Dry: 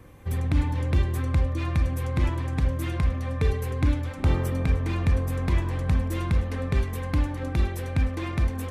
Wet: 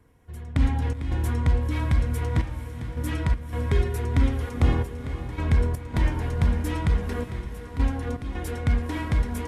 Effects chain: trance gate "...xx.xxxxxxx" 88 bpm -12 dB; echo that smears into a reverb 463 ms, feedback 45%, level -11 dB; speed mistake 48 kHz file played as 44.1 kHz; trim +1.5 dB

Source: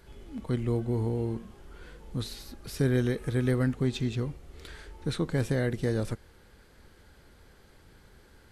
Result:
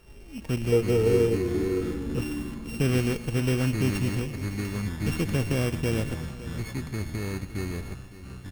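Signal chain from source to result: sorted samples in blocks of 16 samples; in parallel at -6.5 dB: Schmitt trigger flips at -26.5 dBFS; 0.72–2.19 s: on the sum: small resonant body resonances 450/1300 Hz, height 16 dB; ever faster or slower copies 204 ms, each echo -4 st, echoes 3, each echo -6 dB; multi-tap echo 126/559/705 ms -17.5/-15/-20 dB

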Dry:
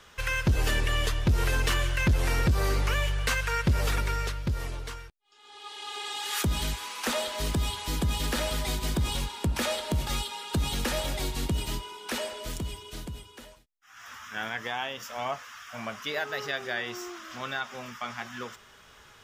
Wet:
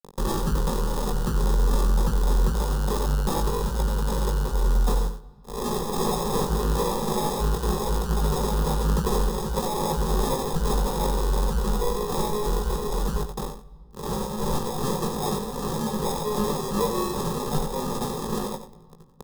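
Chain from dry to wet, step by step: 10.53–11.44 s: comb filter that takes the minimum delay 1.6 ms; peaking EQ 110 Hz -12 dB 0.59 oct; in parallel at 0 dB: compression 6:1, threshold -36 dBFS, peak gain reduction 14.5 dB; on the sum: companded quantiser 2-bit; phase shifter stages 2, 2.6 Hz, lowest notch 210–1700 Hz; sample-and-hold 30×; static phaser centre 440 Hz, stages 8; doubling 19 ms -6 dB; delay 91 ms -10 dB; on a send at -22.5 dB: reverberation RT60 2.4 s, pre-delay 82 ms; on the sum: trim +4.5 dB

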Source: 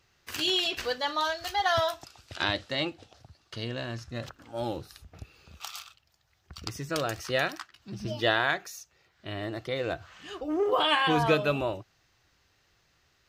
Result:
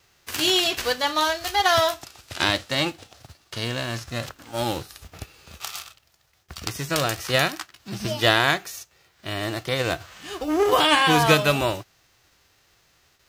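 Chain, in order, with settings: formants flattened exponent 0.6; gate with hold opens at -58 dBFS; trim +6.5 dB

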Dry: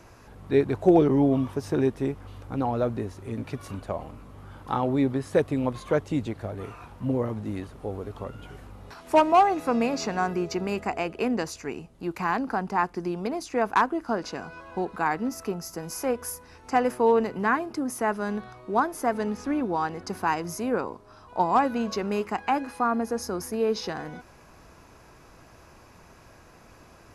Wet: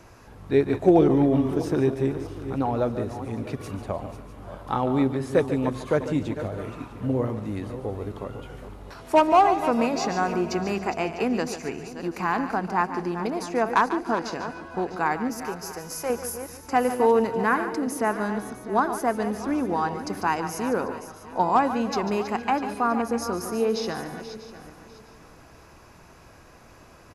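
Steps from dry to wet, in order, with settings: backward echo that repeats 325 ms, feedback 49%, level -11 dB; 15.37–16.10 s: peaking EQ 240 Hz -12 dB 1 oct; feedback delay 145 ms, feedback 28%, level -12 dB; trim +1 dB

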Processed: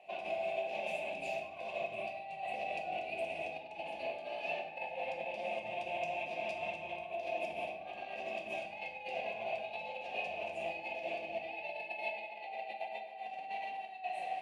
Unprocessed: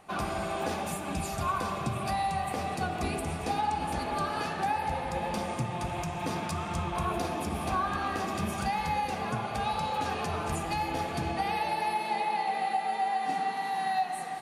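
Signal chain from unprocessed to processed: compressor with a negative ratio -34 dBFS, ratio -0.5; two resonant band-passes 1.3 kHz, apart 2 oct; simulated room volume 250 m³, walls mixed, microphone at 0.93 m; trim +2 dB

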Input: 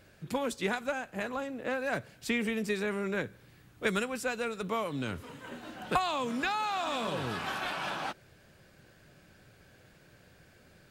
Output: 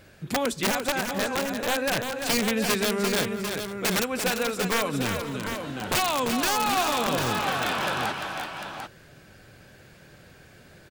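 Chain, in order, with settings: integer overflow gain 24 dB; multi-tap echo 343/515/746 ms -6.5/-19/-7.5 dB; trim +6.5 dB

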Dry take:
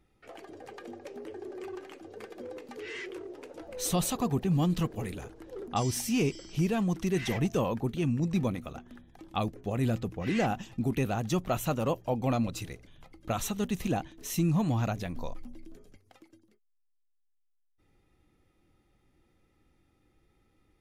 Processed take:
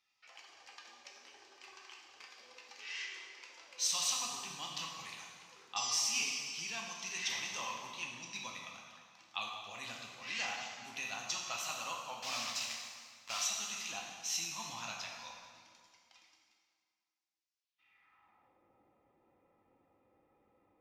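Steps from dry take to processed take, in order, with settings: 12.22–13.42 s: word length cut 6-bit, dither none; band-pass sweep 5.4 kHz -> 500 Hz, 17.56–18.54 s; fifteen-band graphic EQ 400 Hz -8 dB, 1 kHz +10 dB, 2.5 kHz +6 dB, 10 kHz -9 dB; plate-style reverb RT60 2 s, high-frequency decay 0.8×, DRR -1.5 dB; trim +5.5 dB

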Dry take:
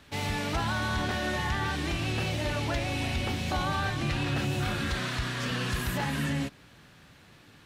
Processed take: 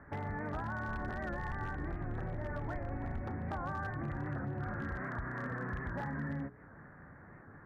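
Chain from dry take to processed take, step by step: 0.87–3.20 s: octave divider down 2 oct, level -2 dB; steep low-pass 1.9 kHz 72 dB/octave; hum notches 60/120/180/240/300/360/420/480 Hz; compression 4:1, threshold -40 dBFS, peak gain reduction 13 dB; wavefolder -33.5 dBFS; warped record 78 rpm, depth 100 cents; trim +2.5 dB

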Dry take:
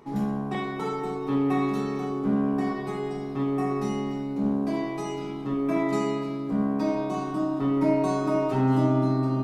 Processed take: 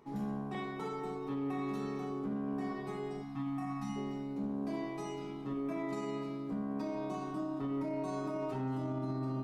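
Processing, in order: spectral selection erased 3.22–3.96 s, 330–660 Hz; peak limiter -20.5 dBFS, peak gain reduction 8.5 dB; trim -9 dB

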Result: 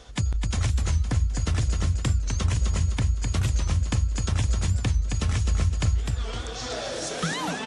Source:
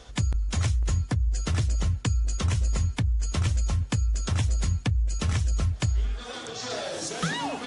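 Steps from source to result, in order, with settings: feedback delay 257 ms, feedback 39%, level -5 dB; warped record 45 rpm, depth 160 cents

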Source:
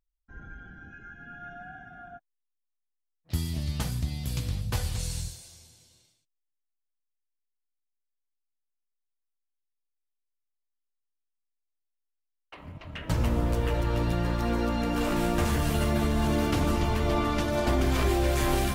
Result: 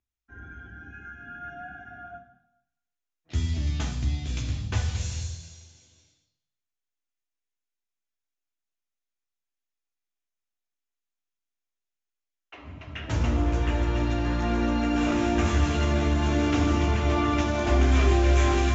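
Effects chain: steep low-pass 7.4 kHz 72 dB/octave; reverberation RT60 0.80 s, pre-delay 3 ms, DRR 4 dB; trim -4.5 dB

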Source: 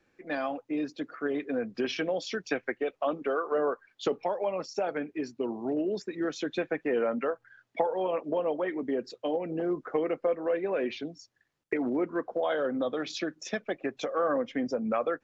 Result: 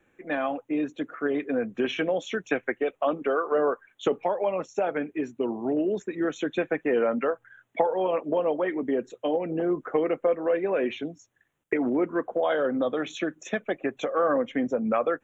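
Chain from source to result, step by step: Butterworth band-stop 4.8 kHz, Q 1.6; trim +4 dB

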